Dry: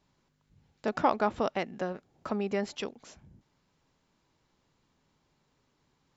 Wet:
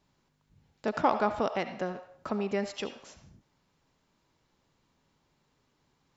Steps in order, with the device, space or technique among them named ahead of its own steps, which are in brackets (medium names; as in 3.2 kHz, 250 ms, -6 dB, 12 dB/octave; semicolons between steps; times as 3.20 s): filtered reverb send (on a send: high-pass 560 Hz 24 dB/octave + low-pass 5.9 kHz + reverberation RT60 0.55 s, pre-delay 64 ms, DRR 8.5 dB)